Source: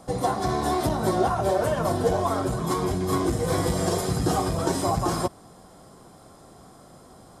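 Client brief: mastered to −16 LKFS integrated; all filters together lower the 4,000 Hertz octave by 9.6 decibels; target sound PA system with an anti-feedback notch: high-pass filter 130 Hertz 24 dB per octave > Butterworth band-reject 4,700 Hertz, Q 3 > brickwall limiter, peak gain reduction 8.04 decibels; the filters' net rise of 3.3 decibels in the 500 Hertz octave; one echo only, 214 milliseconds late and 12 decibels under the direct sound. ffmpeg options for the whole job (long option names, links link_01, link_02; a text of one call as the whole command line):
ffmpeg -i in.wav -af "highpass=frequency=130:width=0.5412,highpass=frequency=130:width=1.3066,asuperstop=centerf=4700:order=8:qfactor=3,equalizer=frequency=500:width_type=o:gain=4.5,equalizer=frequency=4000:width_type=o:gain=-7.5,aecho=1:1:214:0.251,volume=9dB,alimiter=limit=-6.5dB:level=0:latency=1" out.wav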